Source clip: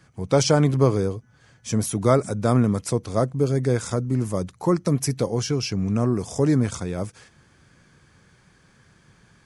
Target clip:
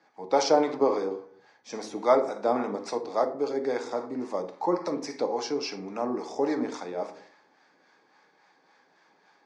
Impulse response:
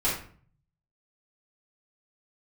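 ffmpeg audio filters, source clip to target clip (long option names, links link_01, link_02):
-filter_complex "[0:a]highpass=frequency=310:width=0.5412,highpass=frequency=310:width=1.3066,equalizer=frequency=840:width_type=q:width=4:gain=9,equalizer=frequency=1400:width_type=q:width=4:gain=-4,equalizer=frequency=3000:width_type=q:width=4:gain=-8,lowpass=frequency=5100:width=0.5412,lowpass=frequency=5100:width=1.3066,asplit=2[link_01][link_02];[1:a]atrim=start_sample=2205,asetrate=37926,aresample=44100[link_03];[link_02][link_03]afir=irnorm=-1:irlink=0,volume=-15.5dB[link_04];[link_01][link_04]amix=inputs=2:normalize=0,acrossover=split=640[link_05][link_06];[link_05]aeval=exprs='val(0)*(1-0.5/2+0.5/2*cos(2*PI*3.6*n/s))':channel_layout=same[link_07];[link_06]aeval=exprs='val(0)*(1-0.5/2-0.5/2*cos(2*PI*3.6*n/s))':channel_layout=same[link_08];[link_07][link_08]amix=inputs=2:normalize=0,volume=-2dB"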